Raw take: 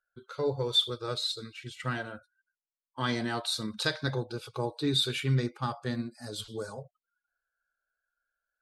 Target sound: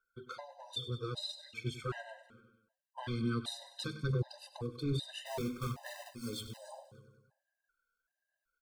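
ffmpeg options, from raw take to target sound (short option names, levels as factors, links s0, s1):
-filter_complex "[0:a]bandreject=f=50:t=h:w=6,bandreject=f=100:t=h:w=6,bandreject=f=150:t=h:w=6,bandreject=f=200:t=h:w=6,bandreject=f=250:t=h:w=6,acrossover=split=220[s0][s1];[s0]aeval=exprs='0.02*(abs(mod(val(0)/0.02+3,4)-2)-1)':c=same[s2];[s1]acompressor=threshold=0.00794:ratio=4[s3];[s2][s3]amix=inputs=2:normalize=0,asplit=3[s4][s5][s6];[s4]afade=t=out:st=5.25:d=0.02[s7];[s5]acrusher=bits=2:mode=log:mix=0:aa=0.000001,afade=t=in:st=5.25:d=0.02,afade=t=out:st=6.56:d=0.02[s8];[s6]afade=t=in:st=6.56:d=0.02[s9];[s7][s8][s9]amix=inputs=3:normalize=0,aphaser=in_gain=1:out_gain=1:delay=4.4:decay=0.42:speed=1.2:type=sinusoidal,aecho=1:1:98|196|294|392|490|588:0.2|0.12|0.0718|0.0431|0.0259|0.0155,afftfilt=real='re*gt(sin(2*PI*1.3*pts/sr)*(1-2*mod(floor(b*sr/1024/520),2)),0)':imag='im*gt(sin(2*PI*1.3*pts/sr)*(1-2*mod(floor(b*sr/1024/520),2)),0)':win_size=1024:overlap=0.75,volume=1.19"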